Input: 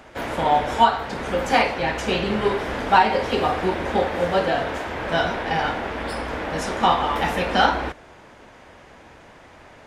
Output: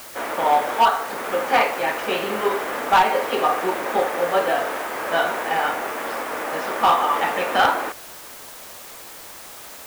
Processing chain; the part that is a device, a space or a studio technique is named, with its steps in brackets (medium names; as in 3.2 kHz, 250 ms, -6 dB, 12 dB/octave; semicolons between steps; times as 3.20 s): drive-through speaker (band-pass 370–3100 Hz; peaking EQ 1.2 kHz +5.5 dB 0.23 oct; hard clipper -11.5 dBFS, distortion -15 dB; white noise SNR 18 dB); trim +1.5 dB